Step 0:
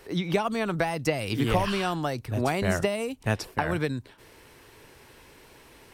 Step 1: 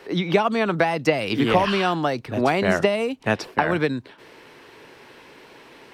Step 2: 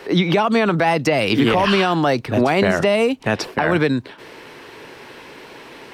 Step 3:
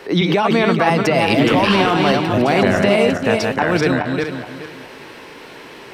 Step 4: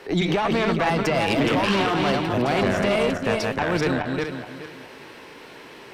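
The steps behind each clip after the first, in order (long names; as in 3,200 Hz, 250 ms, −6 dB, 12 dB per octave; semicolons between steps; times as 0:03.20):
three-way crossover with the lows and the highs turned down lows −18 dB, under 150 Hz, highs −14 dB, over 5,100 Hz; level +7 dB
brickwall limiter −14.5 dBFS, peak gain reduction 9.5 dB; level +7.5 dB
feedback delay that plays each chunk backwards 212 ms, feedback 50%, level −3 dB
tube saturation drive 11 dB, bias 0.55; level −3 dB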